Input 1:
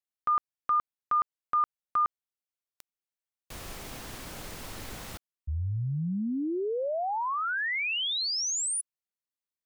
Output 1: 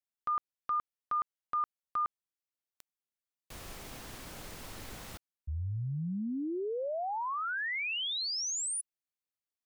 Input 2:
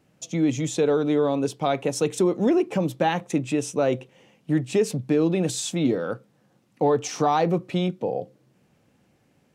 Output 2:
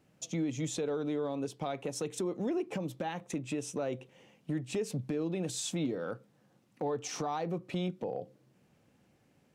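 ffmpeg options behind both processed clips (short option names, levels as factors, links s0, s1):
-af "acompressor=threshold=0.0708:ratio=6:attack=0.18:release=581:knee=1:detection=peak,volume=0.596"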